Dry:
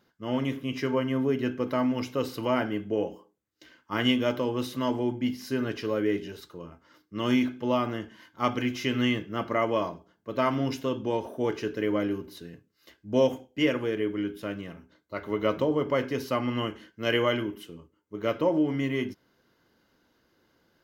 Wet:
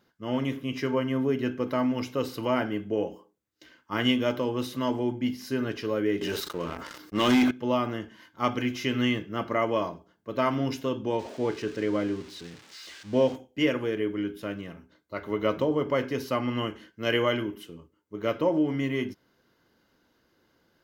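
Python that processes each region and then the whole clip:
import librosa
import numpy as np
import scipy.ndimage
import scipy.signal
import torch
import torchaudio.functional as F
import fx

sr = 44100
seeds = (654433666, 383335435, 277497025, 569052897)

y = fx.chain(x, sr, fx.low_shelf(hz=220.0, db=-9.0),
    fx.leveller(passes=3),
    fx.sustainer(db_per_s=43.0), at=(6.21, 7.51))
y = fx.chain(y, sr, fx.crossing_spikes(level_db=-27.0),
    fx.air_absorb(metres=140.0), at=(11.19, 13.36))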